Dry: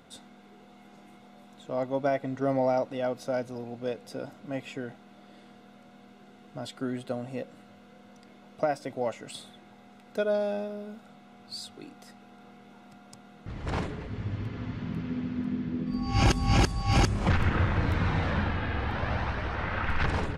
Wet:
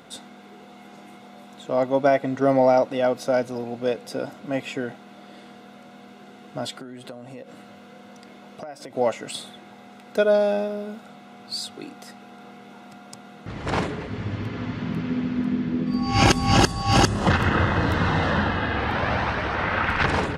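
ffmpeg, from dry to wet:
-filter_complex "[0:a]asettb=1/sr,asplit=3[s0][s1][s2];[s0]atrim=end=6.704[s3];[s1]atrim=start=6.7:end=8.95,asetpts=PTS-STARTPTS,afade=t=in:d=0.004:c=qsin,afade=t=out:st=2.246:d=0.004:c=qsin,acompressor=threshold=0.00794:ratio=10:attack=3.2:release=140:knee=1:detection=peak[s4];[s2]atrim=start=8.946[s5];[s3][s4]acrossfade=d=0.004:c1=hsin:c2=qsin[s6];[s6][s5]acrossfade=d=0.004:c1=qsin:c2=hsin,asettb=1/sr,asplit=3[s7][s8][s9];[s7]atrim=end=16.514[s10];[s8]atrim=start=16.51:end=18.76,asetpts=PTS-STARTPTS,afade=t=in:d=0.004:c=qsin,afade=t=out:st=2.246:d=0.004:c=qsin,asuperstop=centerf=2300:order=4:qfactor=6.3[s11];[s9]atrim=start=18.756[s12];[s10][s11]acrossfade=d=0.004:c1=hsin:c2=qsin[s13];[s13][s12]acrossfade=d=0.004:c1=qsin:c2=hsin,highpass=f=180:p=1,volume=2.82"

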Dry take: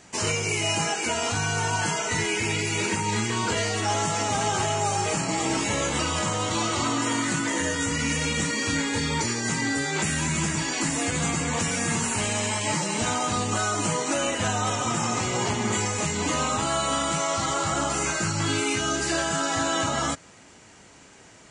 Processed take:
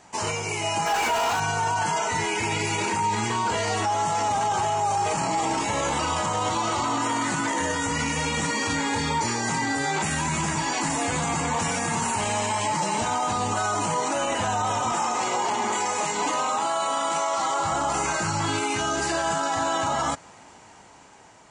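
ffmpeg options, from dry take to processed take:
-filter_complex "[0:a]asettb=1/sr,asplit=3[s0][s1][s2];[s0]atrim=end=0.864[s3];[s1]atrim=start=0.86:end=1.4,asetpts=PTS-STARTPTS,afade=t=in:d=0.004:c=qsin,afade=t=out:st=0.536:d=0.004:c=qsin,asplit=2[s4][s5];[s5]highpass=f=720:p=1,volume=31.6,asoftclip=type=tanh:threshold=0.2[s6];[s4][s6]amix=inputs=2:normalize=0,lowpass=f=3400:p=1,volume=0.501[s7];[s2]atrim=start=1.396[s8];[s3][s7]acrossfade=d=0.004:c1=hsin:c2=qsin[s9];[s9][s8]acrossfade=d=0.004:c1=qsin:c2=hsin,asettb=1/sr,asplit=3[s10][s11][s12];[s10]atrim=end=14.924[s13];[s11]atrim=start=14.92:end=17.6,asetpts=PTS-STARTPTS,afade=t=in:d=0.004:c=qsin,afade=t=out:st=2.676:d=0.004:c=qsin,highpass=290[s14];[s12]atrim=start=17.596[s15];[s13][s14]acrossfade=d=0.004:c1=hsin:c2=qsin[s16];[s16][s15]acrossfade=d=0.004:c1=qsin:c2=hsin,dynaudnorm=f=640:g=5:m=1.58,equalizer=f=880:t=o:w=0.84:g=11,alimiter=limit=0.224:level=0:latency=1:release=13,volume=0.631"

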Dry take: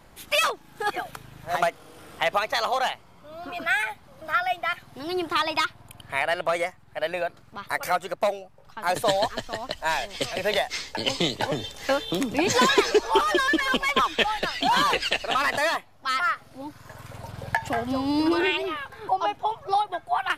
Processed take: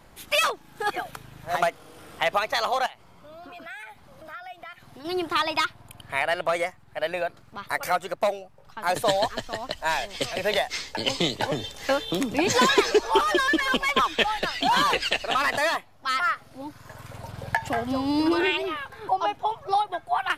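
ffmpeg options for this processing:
-filter_complex "[0:a]asettb=1/sr,asplit=3[s0][s1][s2];[s0]atrim=end=2.864[s3];[s1]atrim=start=2.86:end=5.05,asetpts=PTS-STARTPTS,afade=t=in:d=0.004:c=qsin,afade=t=out:st=2.186:d=0.004:c=qsin,acompressor=threshold=0.00794:ratio=3:attack=3.2:release=140:knee=1:detection=peak[s4];[s2]atrim=start=5.046[s5];[s3][s4]acrossfade=d=0.004:c1=hsin:c2=qsin[s6];[s6][s5]acrossfade=d=0.004:c1=qsin:c2=hsin"

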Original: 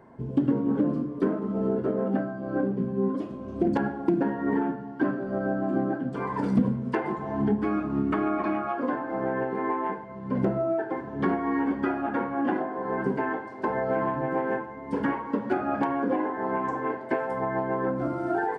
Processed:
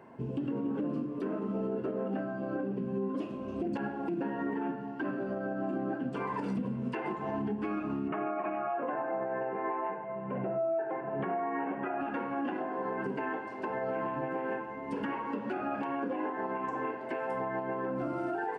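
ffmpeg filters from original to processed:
-filter_complex "[0:a]asettb=1/sr,asplit=3[s0][s1][s2];[s0]atrim=end=8.084[s3];[s1]atrim=start=8.08:end=12.01,asetpts=PTS-STARTPTS,afade=t=in:d=0.004:c=qsin,afade=t=out:st=3.926:d=0.004:c=qsin,highpass=140,equalizer=f=150:t=q:w=4:g=6,equalizer=f=250:t=q:w=4:g=-9,equalizer=f=690:t=q:w=4:g=9,lowpass=f=2500:w=0.5412,lowpass=f=2500:w=1.3066[s4];[s2]atrim=start=12.006[s5];[s3][s4]acrossfade=d=0.004:c1=hsin:c2=qsin[s6];[s6][s5]acrossfade=d=0.004:c1=qsin:c2=hsin,highpass=f=160:p=1,equalizer=f=2700:t=o:w=0.22:g=12.5,alimiter=level_in=1.19:limit=0.0631:level=0:latency=1:release=169,volume=0.841"

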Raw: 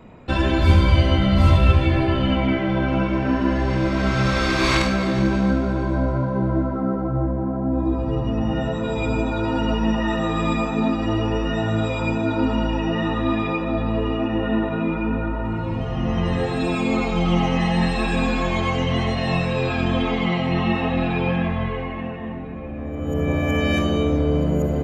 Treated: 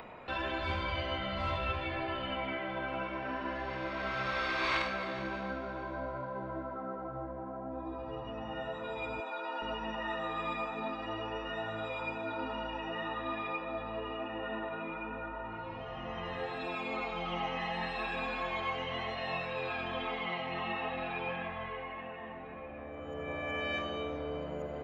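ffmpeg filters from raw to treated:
-filter_complex "[0:a]asettb=1/sr,asplit=3[s0][s1][s2];[s0]atrim=end=9.204[s3];[s1]atrim=start=9.2:end=9.62,asetpts=PTS-STARTPTS,afade=t=in:d=0.004:c=qsin,afade=t=out:st=0.416:d=0.004:c=qsin,highpass=430[s4];[s2]atrim=start=9.616[s5];[s3][s4]acrossfade=d=0.004:c1=hsin:c2=qsin[s6];[s6][s5]acrossfade=d=0.004:c1=qsin:c2=hsin,acrossover=split=500 4300:gain=0.158 1 0.0794[s7][s8][s9];[s7][s8][s9]amix=inputs=3:normalize=0,acompressor=mode=upward:threshold=0.0355:ratio=2.5,volume=0.355"

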